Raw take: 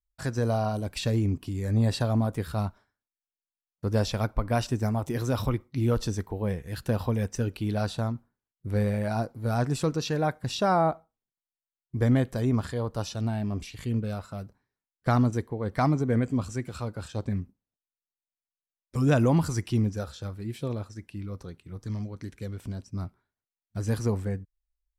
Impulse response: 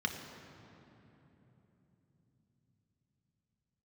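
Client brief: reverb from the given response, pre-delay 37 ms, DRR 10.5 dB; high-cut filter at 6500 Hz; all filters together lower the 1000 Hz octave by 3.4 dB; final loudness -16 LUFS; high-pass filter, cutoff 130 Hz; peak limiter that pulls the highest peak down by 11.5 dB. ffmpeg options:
-filter_complex "[0:a]highpass=130,lowpass=6.5k,equalizer=f=1k:t=o:g=-5,alimiter=limit=-22dB:level=0:latency=1,asplit=2[a][b];[1:a]atrim=start_sample=2205,adelay=37[c];[b][c]afir=irnorm=-1:irlink=0,volume=-15.5dB[d];[a][d]amix=inputs=2:normalize=0,volume=18dB"

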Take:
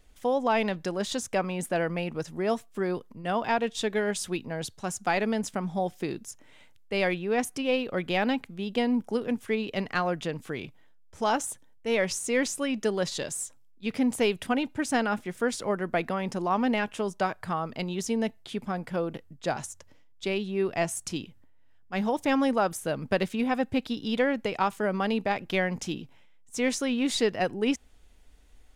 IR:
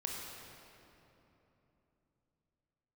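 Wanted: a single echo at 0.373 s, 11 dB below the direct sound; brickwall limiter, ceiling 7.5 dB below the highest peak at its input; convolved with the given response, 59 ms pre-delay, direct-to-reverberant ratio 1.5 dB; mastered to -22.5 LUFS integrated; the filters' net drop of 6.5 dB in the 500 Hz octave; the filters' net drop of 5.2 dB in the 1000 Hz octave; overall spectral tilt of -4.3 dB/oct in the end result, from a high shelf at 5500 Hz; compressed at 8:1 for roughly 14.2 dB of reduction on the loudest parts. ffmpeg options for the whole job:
-filter_complex "[0:a]equalizer=f=500:t=o:g=-7,equalizer=f=1k:t=o:g=-4,highshelf=f=5.5k:g=-3.5,acompressor=threshold=-39dB:ratio=8,alimiter=level_in=9.5dB:limit=-24dB:level=0:latency=1,volume=-9.5dB,aecho=1:1:373:0.282,asplit=2[a][b];[1:a]atrim=start_sample=2205,adelay=59[c];[b][c]afir=irnorm=-1:irlink=0,volume=-3dB[d];[a][d]amix=inputs=2:normalize=0,volume=19dB"

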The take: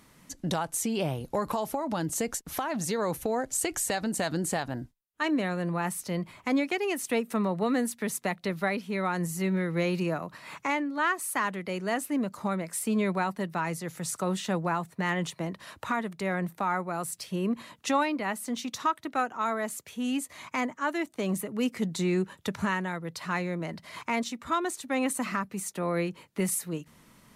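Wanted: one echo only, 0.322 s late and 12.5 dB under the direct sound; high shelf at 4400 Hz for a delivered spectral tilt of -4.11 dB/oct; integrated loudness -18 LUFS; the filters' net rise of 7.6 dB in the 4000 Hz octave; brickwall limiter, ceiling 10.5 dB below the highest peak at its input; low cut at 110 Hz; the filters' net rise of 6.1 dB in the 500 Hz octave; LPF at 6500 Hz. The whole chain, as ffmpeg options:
-af "highpass=110,lowpass=6.5k,equalizer=f=500:t=o:g=7.5,equalizer=f=4k:t=o:g=8.5,highshelf=f=4.4k:g=3,alimiter=limit=-21.5dB:level=0:latency=1,aecho=1:1:322:0.237,volume=13.5dB"

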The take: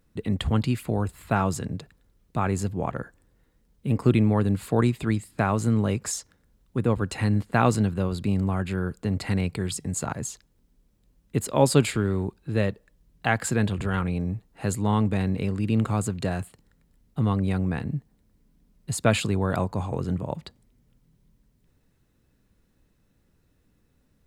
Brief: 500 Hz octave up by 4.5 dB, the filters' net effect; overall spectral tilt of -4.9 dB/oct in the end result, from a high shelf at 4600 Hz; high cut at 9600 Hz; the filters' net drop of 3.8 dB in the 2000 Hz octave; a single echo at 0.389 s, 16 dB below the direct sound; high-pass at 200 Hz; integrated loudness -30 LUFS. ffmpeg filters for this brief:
-af "highpass=200,lowpass=9.6k,equalizer=f=500:t=o:g=6,equalizer=f=2k:t=o:g=-7,highshelf=f=4.6k:g=7,aecho=1:1:389:0.158,volume=-3.5dB"

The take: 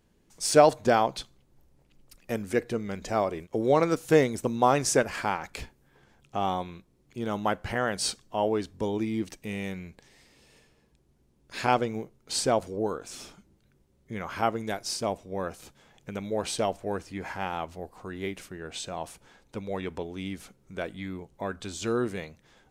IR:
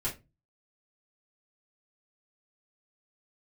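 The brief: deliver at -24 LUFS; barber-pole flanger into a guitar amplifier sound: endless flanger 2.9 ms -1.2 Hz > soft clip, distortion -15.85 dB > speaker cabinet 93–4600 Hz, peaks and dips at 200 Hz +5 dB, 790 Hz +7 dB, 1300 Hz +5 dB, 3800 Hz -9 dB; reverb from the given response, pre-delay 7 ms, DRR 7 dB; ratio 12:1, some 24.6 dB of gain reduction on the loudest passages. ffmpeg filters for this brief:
-filter_complex "[0:a]acompressor=threshold=-38dB:ratio=12,asplit=2[a][b];[1:a]atrim=start_sample=2205,adelay=7[c];[b][c]afir=irnorm=-1:irlink=0,volume=-11dB[d];[a][d]amix=inputs=2:normalize=0,asplit=2[e][f];[f]adelay=2.9,afreqshift=-1.2[g];[e][g]amix=inputs=2:normalize=1,asoftclip=threshold=-37.5dB,highpass=93,equalizer=f=200:t=q:w=4:g=5,equalizer=f=790:t=q:w=4:g=7,equalizer=f=1.3k:t=q:w=4:g=5,equalizer=f=3.8k:t=q:w=4:g=-9,lowpass=f=4.6k:w=0.5412,lowpass=f=4.6k:w=1.3066,volume=21.5dB"

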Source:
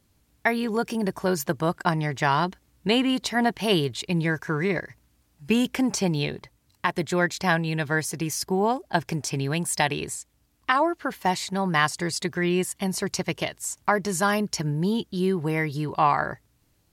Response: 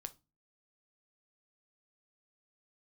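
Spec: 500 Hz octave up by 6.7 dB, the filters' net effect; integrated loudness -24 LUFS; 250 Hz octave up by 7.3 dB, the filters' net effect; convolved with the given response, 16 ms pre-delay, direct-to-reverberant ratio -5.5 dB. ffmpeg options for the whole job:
-filter_complex "[0:a]equalizer=f=250:t=o:g=8,equalizer=f=500:t=o:g=6,asplit=2[a][b];[1:a]atrim=start_sample=2205,adelay=16[c];[b][c]afir=irnorm=-1:irlink=0,volume=10dB[d];[a][d]amix=inputs=2:normalize=0,volume=-10.5dB"

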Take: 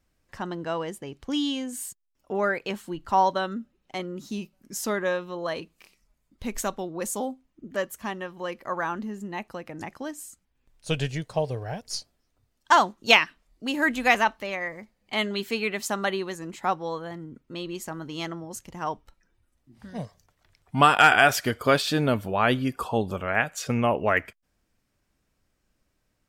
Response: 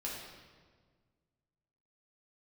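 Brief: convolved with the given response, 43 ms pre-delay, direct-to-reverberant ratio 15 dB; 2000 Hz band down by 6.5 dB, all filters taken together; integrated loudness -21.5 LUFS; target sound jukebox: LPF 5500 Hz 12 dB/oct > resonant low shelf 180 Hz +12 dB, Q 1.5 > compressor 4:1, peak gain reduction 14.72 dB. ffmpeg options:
-filter_complex "[0:a]equalizer=f=2k:t=o:g=-9,asplit=2[a][b];[1:a]atrim=start_sample=2205,adelay=43[c];[b][c]afir=irnorm=-1:irlink=0,volume=-16.5dB[d];[a][d]amix=inputs=2:normalize=0,lowpass=5.5k,lowshelf=f=180:t=q:w=1.5:g=12,acompressor=threshold=-29dB:ratio=4,volume=12.5dB"

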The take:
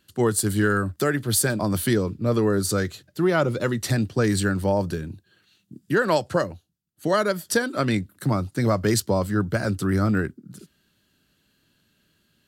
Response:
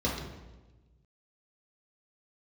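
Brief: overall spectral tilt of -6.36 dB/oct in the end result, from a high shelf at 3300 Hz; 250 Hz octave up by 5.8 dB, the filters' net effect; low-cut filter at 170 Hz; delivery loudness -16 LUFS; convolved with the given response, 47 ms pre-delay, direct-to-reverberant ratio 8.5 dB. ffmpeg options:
-filter_complex "[0:a]highpass=170,equalizer=f=250:t=o:g=9,highshelf=f=3.3k:g=-4,asplit=2[a][b];[1:a]atrim=start_sample=2205,adelay=47[c];[b][c]afir=irnorm=-1:irlink=0,volume=-18dB[d];[a][d]amix=inputs=2:normalize=0,volume=3dB"

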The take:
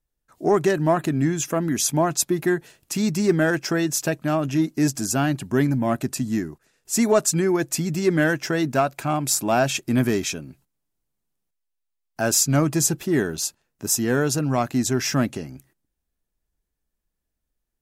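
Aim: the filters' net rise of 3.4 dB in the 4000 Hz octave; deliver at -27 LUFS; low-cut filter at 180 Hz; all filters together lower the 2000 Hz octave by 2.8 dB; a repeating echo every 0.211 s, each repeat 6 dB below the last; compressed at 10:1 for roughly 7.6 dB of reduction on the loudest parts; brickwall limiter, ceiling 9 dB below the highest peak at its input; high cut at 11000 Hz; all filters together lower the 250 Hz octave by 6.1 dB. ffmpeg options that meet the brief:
-af "highpass=180,lowpass=11k,equalizer=f=250:t=o:g=-7,equalizer=f=2k:t=o:g=-5,equalizer=f=4k:t=o:g=6,acompressor=threshold=-23dB:ratio=10,alimiter=limit=-22dB:level=0:latency=1,aecho=1:1:211|422|633|844|1055|1266:0.501|0.251|0.125|0.0626|0.0313|0.0157,volume=4dB"

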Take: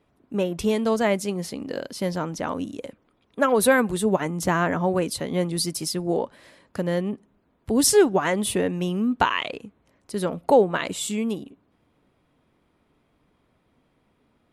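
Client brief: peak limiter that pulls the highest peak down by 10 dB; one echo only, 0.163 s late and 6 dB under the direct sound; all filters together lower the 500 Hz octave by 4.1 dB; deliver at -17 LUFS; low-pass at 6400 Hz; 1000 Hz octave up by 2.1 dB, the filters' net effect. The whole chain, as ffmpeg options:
-af "lowpass=6.4k,equalizer=f=500:t=o:g=-6,equalizer=f=1k:t=o:g=4.5,alimiter=limit=-14.5dB:level=0:latency=1,aecho=1:1:163:0.501,volume=9.5dB"

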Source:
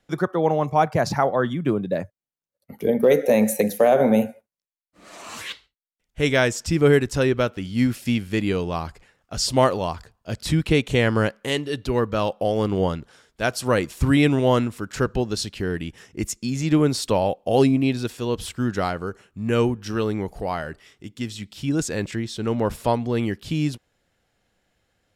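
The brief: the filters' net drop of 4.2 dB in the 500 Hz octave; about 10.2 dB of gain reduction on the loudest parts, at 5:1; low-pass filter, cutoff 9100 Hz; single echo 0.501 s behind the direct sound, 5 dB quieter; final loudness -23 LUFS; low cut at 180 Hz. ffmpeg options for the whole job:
-af "highpass=180,lowpass=9.1k,equalizer=f=500:t=o:g=-5,acompressor=threshold=-27dB:ratio=5,aecho=1:1:501:0.562,volume=8.5dB"

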